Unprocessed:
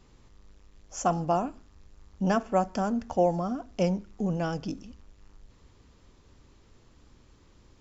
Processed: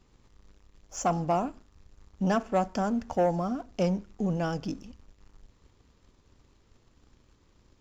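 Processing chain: sample leveller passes 1; gain -3.5 dB

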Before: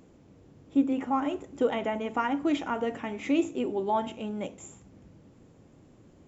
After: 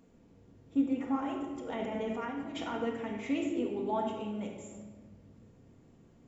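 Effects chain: 1.55–2.74 negative-ratio compressor -33 dBFS, ratio -1; shoebox room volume 1100 m³, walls mixed, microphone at 1.7 m; gain -8 dB

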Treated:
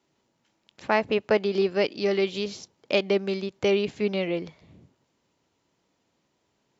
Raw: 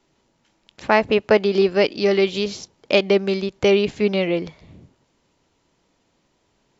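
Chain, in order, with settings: HPF 77 Hz; gain -6.5 dB

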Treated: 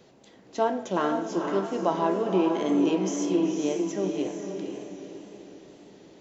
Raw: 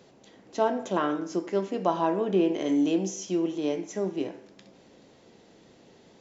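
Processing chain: diffused feedback echo 0.489 s, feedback 44%, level -5 dB; wow and flutter 38 cents

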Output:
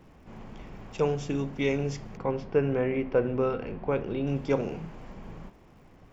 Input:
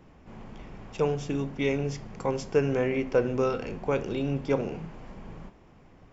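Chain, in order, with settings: crackle 190/s -59 dBFS; 2.17–4.27 air absorption 290 m

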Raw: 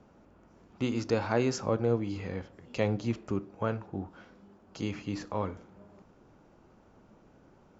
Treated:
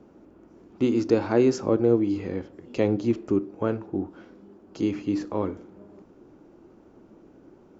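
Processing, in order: bell 330 Hz +13 dB 1 oct

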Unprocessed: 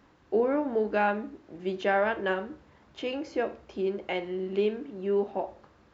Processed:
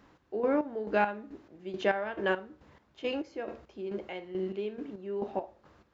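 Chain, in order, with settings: chopper 2.3 Hz, depth 65%, duty 40%

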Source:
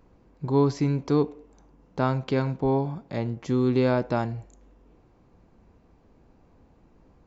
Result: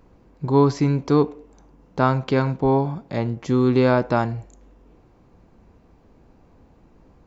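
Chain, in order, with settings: dynamic EQ 1200 Hz, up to +4 dB, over -38 dBFS, Q 1.3; gain +4.5 dB

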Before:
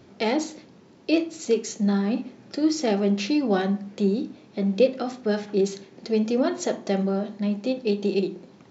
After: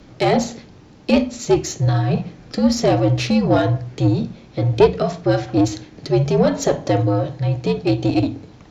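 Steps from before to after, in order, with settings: one diode to ground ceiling -19.5 dBFS; dynamic EQ 750 Hz, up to +6 dB, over -42 dBFS, Q 1.7; frequency shift -78 Hz; gain +7 dB

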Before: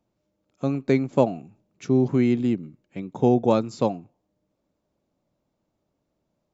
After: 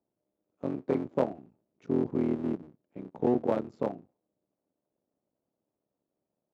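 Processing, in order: cycle switcher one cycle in 3, muted; band-pass 400 Hz, Q 0.7; gain -5 dB

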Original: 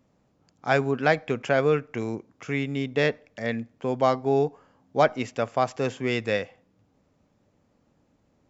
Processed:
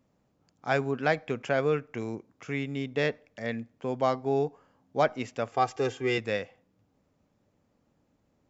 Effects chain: 5.52–6.18 comb 2.5 ms, depth 92%; gain -4.5 dB

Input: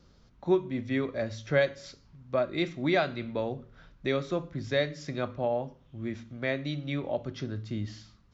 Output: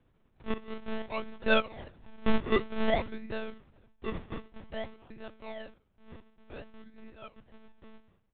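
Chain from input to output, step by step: Doppler pass-by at 2.15, 13 m/s, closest 5.5 m; decimation with a swept rate 40×, swing 100% 0.53 Hz; monotone LPC vocoder at 8 kHz 220 Hz; gain +5.5 dB

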